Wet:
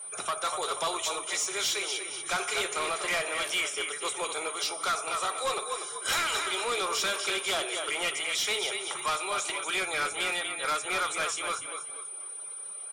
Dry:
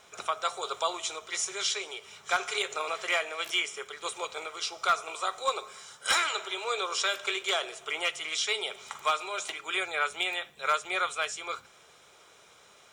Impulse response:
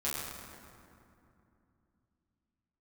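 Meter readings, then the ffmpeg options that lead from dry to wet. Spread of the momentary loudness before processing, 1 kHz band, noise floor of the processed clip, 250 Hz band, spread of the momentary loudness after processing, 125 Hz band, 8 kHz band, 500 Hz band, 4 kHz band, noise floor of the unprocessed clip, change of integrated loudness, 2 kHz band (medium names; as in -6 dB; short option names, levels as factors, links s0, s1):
8 LU, 0.0 dB, -41 dBFS, +4.5 dB, 5 LU, no reading, +5.0 dB, +1.5 dB, +1.0 dB, -57 dBFS, +1.0 dB, +0.5 dB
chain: -filter_complex "[0:a]aeval=exprs='val(0)+0.00708*sin(2*PI*9300*n/s)':c=same,asplit=2[s0][s1];[s1]asplit=4[s2][s3][s4][s5];[s2]adelay=241,afreqshift=-33,volume=0.335[s6];[s3]adelay=482,afreqshift=-66,volume=0.114[s7];[s4]adelay=723,afreqshift=-99,volume=0.0389[s8];[s5]adelay=964,afreqshift=-132,volume=0.0132[s9];[s6][s7][s8][s9]amix=inputs=4:normalize=0[s10];[s0][s10]amix=inputs=2:normalize=0,asoftclip=type=tanh:threshold=0.0316,afftdn=nr=15:nf=-56,volume=1.88" -ar 44100 -c:a libmp3lame -b:a 80k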